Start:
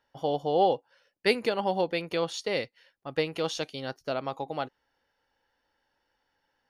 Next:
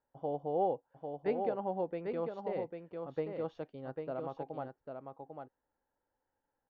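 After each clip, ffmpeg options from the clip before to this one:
-af "lowpass=1k,aecho=1:1:797:0.531,volume=-7.5dB"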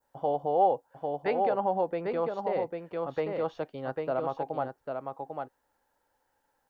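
-filter_complex "[0:a]adynamicequalizer=threshold=0.00178:dfrequency=2600:dqfactor=0.71:tfrequency=2600:tqfactor=0.71:attack=5:release=100:ratio=0.375:range=3:mode=cutabove:tftype=bell,acrossover=split=610[a][b];[a]alimiter=level_in=11dB:limit=-24dB:level=0:latency=1,volume=-11dB[c];[b]acontrast=75[d];[c][d]amix=inputs=2:normalize=0,volume=6dB"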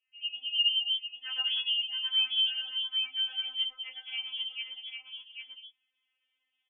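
-filter_complex "[0:a]acrossover=split=580|2200[a][b][c];[c]adelay=110[d];[a]adelay=210[e];[e][b][d]amix=inputs=3:normalize=0,lowpass=f=3.1k:t=q:w=0.5098,lowpass=f=3.1k:t=q:w=0.6013,lowpass=f=3.1k:t=q:w=0.9,lowpass=f=3.1k:t=q:w=2.563,afreqshift=-3600,afftfilt=real='re*3.46*eq(mod(b,12),0)':imag='im*3.46*eq(mod(b,12),0)':win_size=2048:overlap=0.75"

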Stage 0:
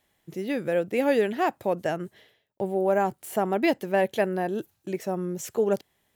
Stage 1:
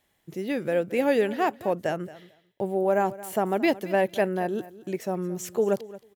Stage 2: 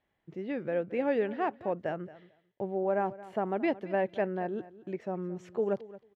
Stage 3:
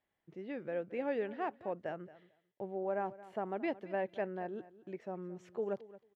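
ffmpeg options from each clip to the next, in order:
-af "aecho=1:1:223|446:0.133|0.02"
-af "lowpass=2.3k,volume=-6dB"
-af "lowshelf=f=200:g=-5,volume=-6dB"

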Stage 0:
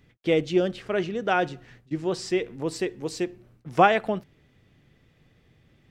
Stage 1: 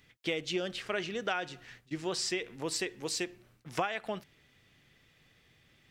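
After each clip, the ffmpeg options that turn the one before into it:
-af "tiltshelf=f=970:g=-7,acompressor=threshold=-27dB:ratio=8,volume=-2dB"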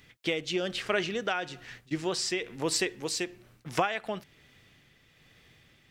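-af "tremolo=f=1.1:d=0.36,volume=6dB"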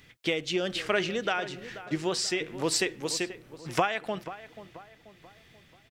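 -filter_complex "[0:a]asplit=2[a][b];[b]adelay=485,lowpass=f=1.9k:p=1,volume=-13.5dB,asplit=2[c][d];[d]adelay=485,lowpass=f=1.9k:p=1,volume=0.46,asplit=2[e][f];[f]adelay=485,lowpass=f=1.9k:p=1,volume=0.46,asplit=2[g][h];[h]adelay=485,lowpass=f=1.9k:p=1,volume=0.46[i];[a][c][e][g][i]amix=inputs=5:normalize=0,volume=1.5dB"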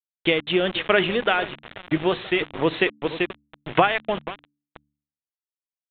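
-af "aeval=exprs='val(0)*gte(abs(val(0)),0.0188)':c=same,bandreject=f=72.75:t=h:w=4,bandreject=f=145.5:t=h:w=4,bandreject=f=218.25:t=h:w=4,bandreject=f=291:t=h:w=4,aresample=8000,aresample=44100,volume=8dB"

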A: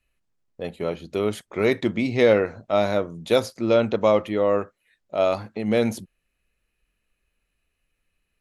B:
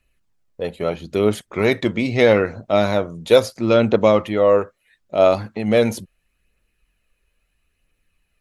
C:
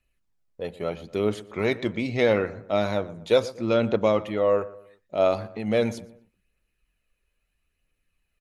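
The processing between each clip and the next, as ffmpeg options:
-af "aphaser=in_gain=1:out_gain=1:delay=2.2:decay=0.31:speed=0.76:type=triangular,volume=4.5dB"
-filter_complex "[0:a]asplit=2[a][b];[b]adelay=120,lowpass=f=2k:p=1,volume=-17dB,asplit=2[c][d];[d]adelay=120,lowpass=f=2k:p=1,volume=0.41,asplit=2[e][f];[f]adelay=120,lowpass=f=2k:p=1,volume=0.41[g];[a][c][e][g]amix=inputs=4:normalize=0,acrossover=split=8400[h][i];[i]acompressor=threshold=-54dB:ratio=4:attack=1:release=60[j];[h][j]amix=inputs=2:normalize=0,volume=-7dB"

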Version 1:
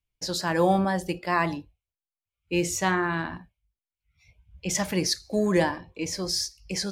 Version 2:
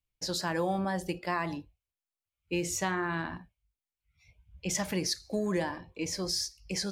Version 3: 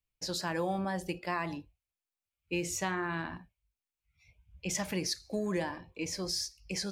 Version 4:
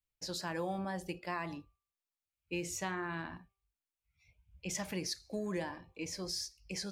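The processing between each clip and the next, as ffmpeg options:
-af "acompressor=threshold=-24dB:ratio=4,volume=-3dB"
-af "equalizer=f=2.5k:w=4.7:g=3.5,volume=-2.5dB"
-af "bandreject=f=392.1:t=h:w=4,bandreject=f=784.2:t=h:w=4,bandreject=f=1.1763k:t=h:w=4,volume=-4.5dB"

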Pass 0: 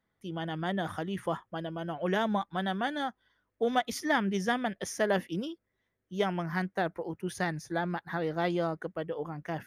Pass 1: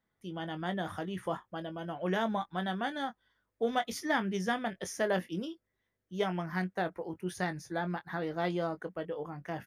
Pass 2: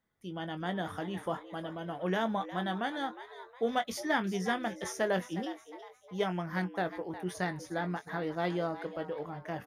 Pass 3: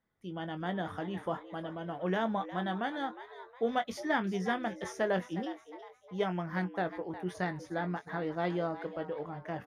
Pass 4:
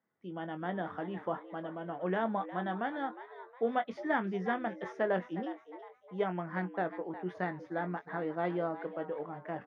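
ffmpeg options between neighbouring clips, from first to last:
-filter_complex "[0:a]asplit=2[a][b];[b]adelay=22,volume=-10dB[c];[a][c]amix=inputs=2:normalize=0,volume=-3dB"
-filter_complex "[0:a]asplit=5[a][b][c][d][e];[b]adelay=360,afreqshift=130,volume=-13.5dB[f];[c]adelay=720,afreqshift=260,volume=-21.7dB[g];[d]adelay=1080,afreqshift=390,volume=-29.9dB[h];[e]adelay=1440,afreqshift=520,volume=-38dB[i];[a][f][g][h][i]amix=inputs=5:normalize=0"
-af "lowpass=f=3.1k:p=1"
-af "highpass=180,lowpass=2.2k"

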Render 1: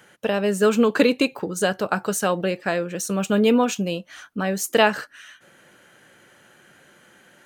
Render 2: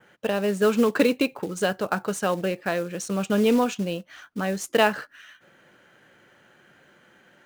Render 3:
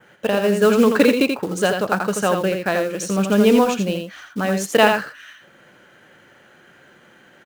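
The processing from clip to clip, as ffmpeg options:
-af "adynamicequalizer=threshold=0.01:dfrequency=5700:dqfactor=0.77:tfrequency=5700:tqfactor=0.77:attack=5:release=100:ratio=0.375:range=2:mode=cutabove:tftype=bell,adynamicsmooth=sensitivity=5.5:basefreq=5.2k,acrusher=bits=5:mode=log:mix=0:aa=0.000001,volume=-2.5dB"
-af "aecho=1:1:83:0.531,volume=5dB"

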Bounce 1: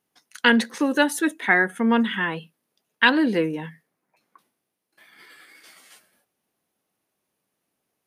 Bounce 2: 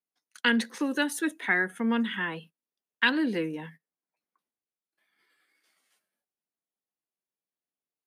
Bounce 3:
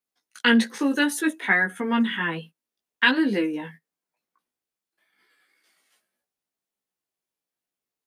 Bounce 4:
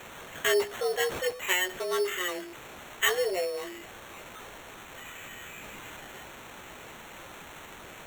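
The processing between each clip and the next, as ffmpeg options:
-filter_complex "[0:a]agate=range=-16dB:threshold=-42dB:ratio=16:detection=peak,highpass=140,acrossover=split=460|1100|3600[a][b][c][d];[b]acompressor=threshold=-35dB:ratio=6[e];[a][e][c][d]amix=inputs=4:normalize=0,volume=-5.5dB"
-af "flanger=delay=15:depth=3.2:speed=0.61,volume=8dB"
-af "aeval=exprs='val(0)+0.5*0.0299*sgn(val(0))':c=same,afreqshift=180,acrusher=samples=9:mix=1:aa=0.000001,volume=-7.5dB"

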